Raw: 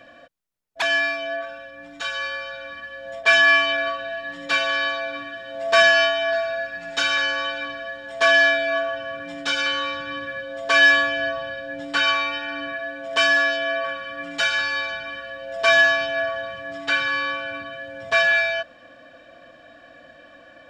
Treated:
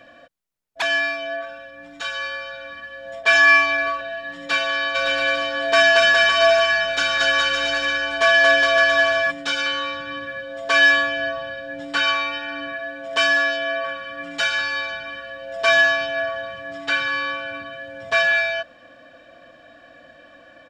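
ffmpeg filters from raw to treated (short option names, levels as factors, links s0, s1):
-filter_complex "[0:a]asettb=1/sr,asplit=3[s0][s1][s2];[s0]atrim=end=3.354[s3];[s1]atrim=start=3.35:end=4.01,asetpts=PTS-STARTPTS,afade=t=in:d=0.004:c=qsin,afade=t=out:st=0.656:d=0.004:c=qsin,aecho=1:1:2.5:0.87,atrim=end_sample=29106[s4];[s2]atrim=start=4.006[s5];[s3][s4]acrossfade=d=0.004:c1=hsin:c2=qsin[s6];[s6][s5]acrossfade=d=0.004:c1=qsin:c2=hsin,asplit=3[s7][s8][s9];[s7]afade=t=out:st=4.94:d=0.02[s10];[s8]aecho=1:1:230|414|561.2|679|773.2|848.5|908.8:0.794|0.631|0.501|0.398|0.316|0.251|0.2,afade=t=in:st=4.94:d=0.02,afade=t=out:st=9.3:d=0.02[s11];[s9]afade=t=in:st=9.3:d=0.02[s12];[s10][s11][s12]amix=inputs=3:normalize=0"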